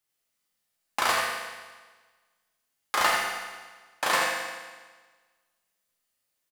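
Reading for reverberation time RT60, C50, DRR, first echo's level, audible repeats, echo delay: 1.4 s, −0.5 dB, −4.0 dB, −6.0 dB, 1, 82 ms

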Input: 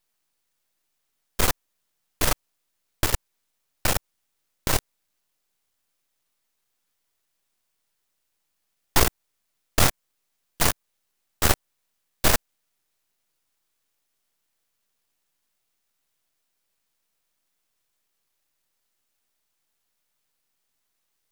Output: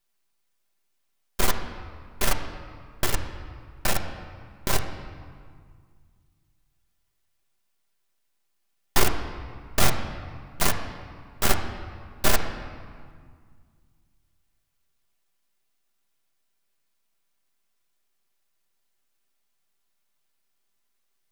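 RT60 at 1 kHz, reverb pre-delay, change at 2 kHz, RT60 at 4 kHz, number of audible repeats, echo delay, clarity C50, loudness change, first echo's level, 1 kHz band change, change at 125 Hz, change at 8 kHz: 2.0 s, 5 ms, −1.0 dB, 1.3 s, no echo audible, no echo audible, 7.5 dB, −3.0 dB, no echo audible, −0.5 dB, −1.5 dB, −3.0 dB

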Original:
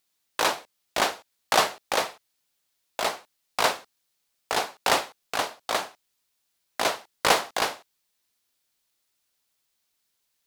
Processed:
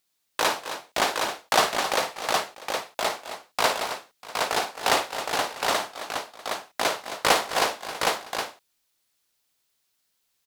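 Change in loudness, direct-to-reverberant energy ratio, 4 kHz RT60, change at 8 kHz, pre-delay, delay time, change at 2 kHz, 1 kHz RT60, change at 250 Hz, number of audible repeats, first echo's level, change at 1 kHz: +0.5 dB, no reverb audible, no reverb audible, +2.0 dB, no reverb audible, 54 ms, +2.0 dB, no reverb audible, +2.0 dB, 4, −10.0 dB, +2.0 dB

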